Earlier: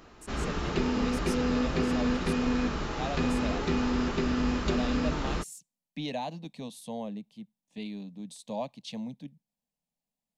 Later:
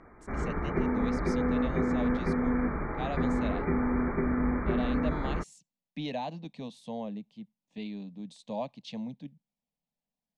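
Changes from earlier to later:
background: add linear-phase brick-wall low-pass 2,400 Hz
master: add high-frequency loss of the air 100 metres

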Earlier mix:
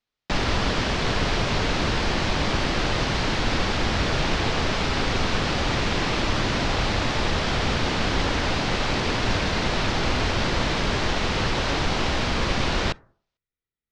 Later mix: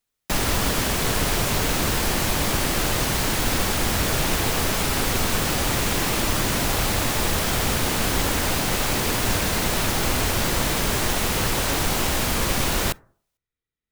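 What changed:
speech: send on
master: remove low-pass filter 5,100 Hz 24 dB per octave

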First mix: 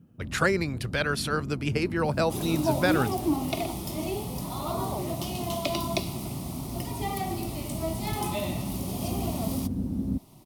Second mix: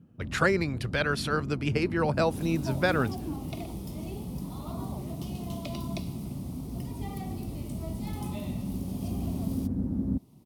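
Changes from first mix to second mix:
speech: add high-shelf EQ 7,000 Hz −8.5 dB
second sound −11.5 dB

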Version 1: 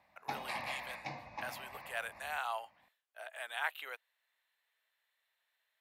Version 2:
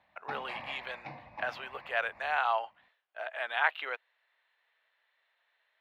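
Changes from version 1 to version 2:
speech +10.5 dB
master: add high-frequency loss of the air 260 metres

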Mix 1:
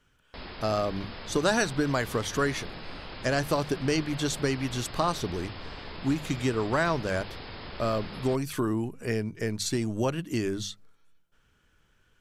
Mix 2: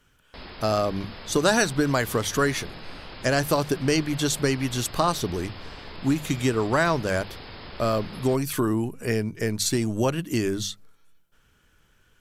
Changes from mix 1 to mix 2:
speech +4.0 dB
master: add parametric band 16,000 Hz +9 dB 0.95 octaves

